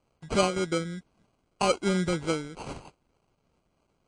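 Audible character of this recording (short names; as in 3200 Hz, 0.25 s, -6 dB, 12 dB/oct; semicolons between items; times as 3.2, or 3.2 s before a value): a quantiser's noise floor 12-bit, dither none; phasing stages 6, 3.2 Hz, lowest notch 750–2200 Hz; aliases and images of a low sample rate 1800 Hz, jitter 0%; MP3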